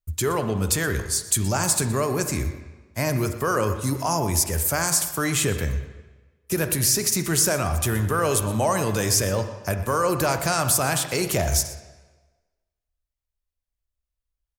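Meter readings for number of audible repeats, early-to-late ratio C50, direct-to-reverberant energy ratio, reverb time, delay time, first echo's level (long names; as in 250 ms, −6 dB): 1, 8.5 dB, 7.5 dB, 1.3 s, 121 ms, −17.0 dB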